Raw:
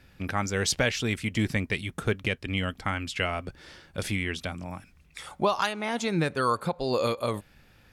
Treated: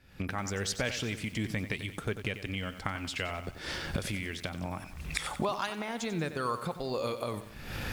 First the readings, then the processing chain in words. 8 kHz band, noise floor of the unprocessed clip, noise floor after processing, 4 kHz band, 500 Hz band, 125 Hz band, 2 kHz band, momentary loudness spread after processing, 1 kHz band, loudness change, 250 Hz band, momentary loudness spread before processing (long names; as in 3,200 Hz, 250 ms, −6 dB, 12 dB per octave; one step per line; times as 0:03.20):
−5.0 dB, −59 dBFS, −48 dBFS, −4.5 dB, −6.5 dB, −5.0 dB, −5.5 dB, 6 LU, −6.5 dB, −6.0 dB, −5.5 dB, 14 LU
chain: camcorder AGC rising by 64 dB per second
feedback echo at a low word length 92 ms, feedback 55%, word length 7 bits, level −11 dB
level −7.5 dB